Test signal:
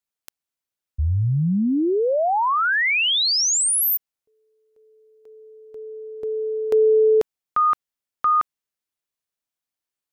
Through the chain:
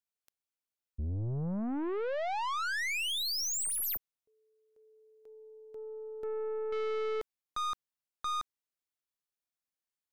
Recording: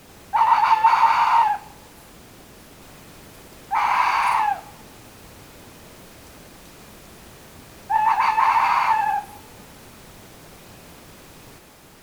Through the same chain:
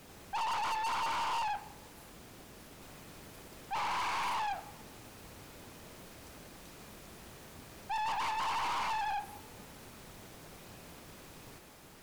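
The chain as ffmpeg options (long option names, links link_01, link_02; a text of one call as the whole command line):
ffmpeg -i in.wav -af "aeval=exprs='(tanh(20*val(0)+0.3)-tanh(0.3))/20':channel_layout=same,volume=-6.5dB" out.wav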